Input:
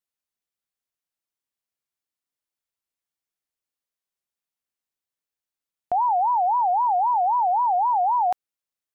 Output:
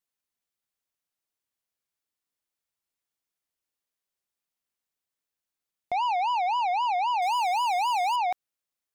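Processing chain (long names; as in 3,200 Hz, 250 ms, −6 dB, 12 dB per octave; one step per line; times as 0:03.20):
0:07.22–0:08.16: power curve on the samples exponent 0.7
soft clipping −25 dBFS, distortion −14 dB
level +1 dB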